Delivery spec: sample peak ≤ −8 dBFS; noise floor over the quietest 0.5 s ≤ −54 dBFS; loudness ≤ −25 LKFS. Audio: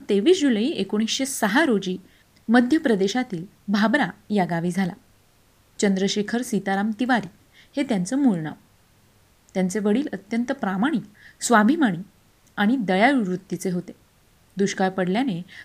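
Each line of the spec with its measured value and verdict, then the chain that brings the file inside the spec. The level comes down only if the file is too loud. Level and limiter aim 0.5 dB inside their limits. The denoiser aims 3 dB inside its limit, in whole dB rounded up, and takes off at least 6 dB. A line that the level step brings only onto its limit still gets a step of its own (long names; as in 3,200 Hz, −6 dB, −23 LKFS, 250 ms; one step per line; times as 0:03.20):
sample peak −4.5 dBFS: out of spec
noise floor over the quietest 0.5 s −58 dBFS: in spec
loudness −22.5 LKFS: out of spec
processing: level −3 dB
brickwall limiter −8.5 dBFS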